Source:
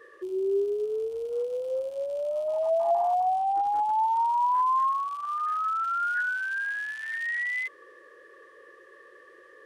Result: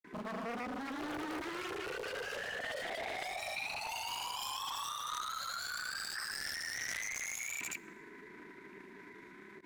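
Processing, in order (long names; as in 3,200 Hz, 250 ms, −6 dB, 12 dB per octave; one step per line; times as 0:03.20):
low-shelf EQ 190 Hz +9.5 dB
downward compressor 2.5 to 1, threshold −29 dBFS, peak gain reduction 6.5 dB
granular cloud 79 ms, grains 26 per second, pitch spread up and down by 0 semitones
frequency shifter −160 Hz
wave folding −35 dBFS
formants moved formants +4 semitones
dense smooth reverb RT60 1.7 s, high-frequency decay 0.65×, DRR 19 dB
highs frequency-modulated by the lows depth 0.75 ms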